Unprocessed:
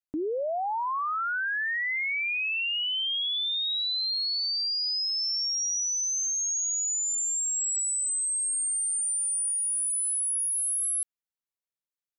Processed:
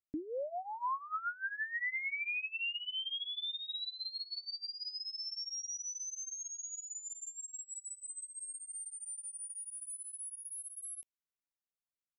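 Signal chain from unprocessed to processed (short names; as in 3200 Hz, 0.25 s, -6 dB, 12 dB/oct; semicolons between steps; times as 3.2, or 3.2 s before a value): 9.41–9.96 low shelf 190 Hz +9.5 dB; phaser stages 12, 3.1 Hz, lowest notch 450–1500 Hz; high shelf 4900 Hz -12 dB; gain -4.5 dB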